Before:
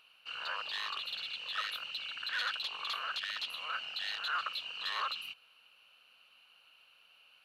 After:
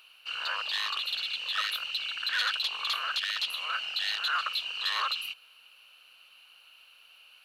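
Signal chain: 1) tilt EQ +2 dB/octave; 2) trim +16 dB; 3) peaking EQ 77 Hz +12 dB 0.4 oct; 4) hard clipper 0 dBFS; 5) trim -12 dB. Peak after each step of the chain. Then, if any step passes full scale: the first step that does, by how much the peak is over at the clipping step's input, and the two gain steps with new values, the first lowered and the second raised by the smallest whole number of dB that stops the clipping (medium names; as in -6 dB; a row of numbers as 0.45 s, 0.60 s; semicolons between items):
-20.5 dBFS, -4.5 dBFS, -4.5 dBFS, -4.5 dBFS, -16.5 dBFS; nothing clips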